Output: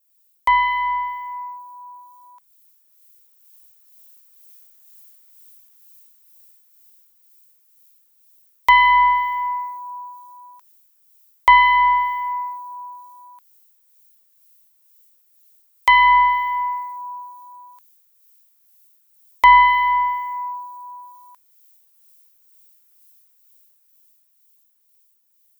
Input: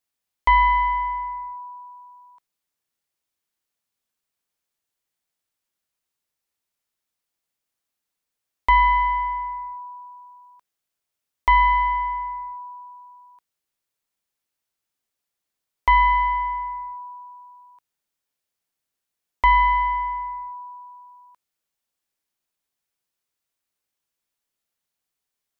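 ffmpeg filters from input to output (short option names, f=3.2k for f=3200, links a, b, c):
-filter_complex "[0:a]aemphasis=mode=production:type=riaa,dynaudnorm=f=330:g=17:m=14.5dB,acrossover=split=1800[a][b];[a]aeval=exprs='val(0)*(1-0.5/2+0.5/2*cos(2*PI*2.1*n/s))':c=same[c];[b]aeval=exprs='val(0)*(1-0.5/2-0.5/2*cos(2*PI*2.1*n/s))':c=same[d];[c][d]amix=inputs=2:normalize=0,volume=1.5dB"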